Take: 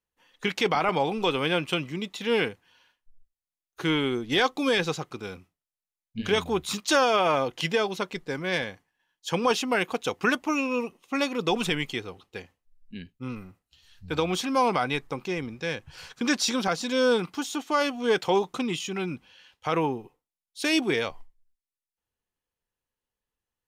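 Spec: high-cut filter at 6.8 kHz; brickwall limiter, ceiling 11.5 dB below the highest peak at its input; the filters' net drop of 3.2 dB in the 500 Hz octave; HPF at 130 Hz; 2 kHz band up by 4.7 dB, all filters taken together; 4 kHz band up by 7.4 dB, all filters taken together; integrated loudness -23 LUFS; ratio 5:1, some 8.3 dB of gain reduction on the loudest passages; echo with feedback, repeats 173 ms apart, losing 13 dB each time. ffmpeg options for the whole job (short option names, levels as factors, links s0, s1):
-af "highpass=130,lowpass=6800,equalizer=f=500:t=o:g=-4,equalizer=f=2000:t=o:g=4,equalizer=f=4000:t=o:g=8.5,acompressor=threshold=0.0562:ratio=5,alimiter=limit=0.0841:level=0:latency=1,aecho=1:1:173|346|519:0.224|0.0493|0.0108,volume=2.99"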